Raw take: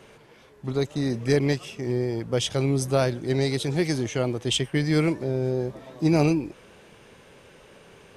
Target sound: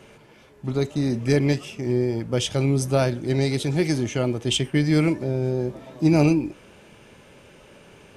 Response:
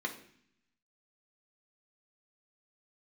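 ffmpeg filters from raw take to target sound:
-filter_complex "[0:a]asplit=2[a][b];[1:a]atrim=start_sample=2205,atrim=end_sample=3528[c];[b][c]afir=irnorm=-1:irlink=0,volume=-13.5dB[d];[a][d]amix=inputs=2:normalize=0,volume=2dB"

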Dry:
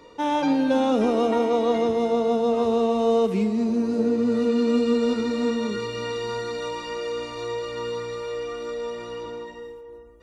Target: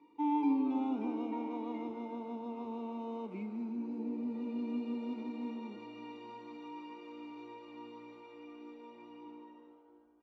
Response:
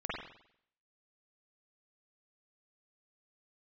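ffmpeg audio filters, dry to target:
-filter_complex "[0:a]asplit=3[a][b][c];[a]bandpass=f=300:t=q:w=8,volume=0dB[d];[b]bandpass=f=870:t=q:w=8,volume=-6dB[e];[c]bandpass=f=2.24k:t=q:w=8,volume=-9dB[f];[d][e][f]amix=inputs=3:normalize=0,asplit=6[g][h][i][j][k][l];[h]adelay=153,afreqshift=130,volume=-20.5dB[m];[i]adelay=306,afreqshift=260,volume=-24.5dB[n];[j]adelay=459,afreqshift=390,volume=-28.5dB[o];[k]adelay=612,afreqshift=520,volume=-32.5dB[p];[l]adelay=765,afreqshift=650,volume=-36.6dB[q];[g][m][n][o][p][q]amix=inputs=6:normalize=0,volume=-3.5dB"

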